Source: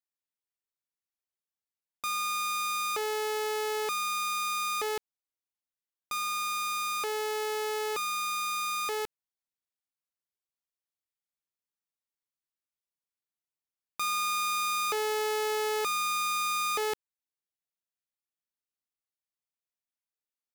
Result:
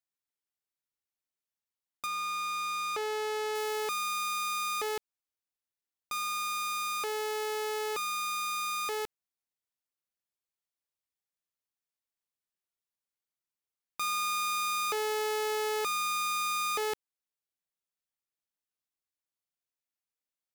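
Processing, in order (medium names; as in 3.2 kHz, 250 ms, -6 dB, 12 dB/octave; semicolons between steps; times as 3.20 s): 2.05–3.54 s: treble shelf 5.5 kHz -> 11 kHz -10.5 dB; trim -1.5 dB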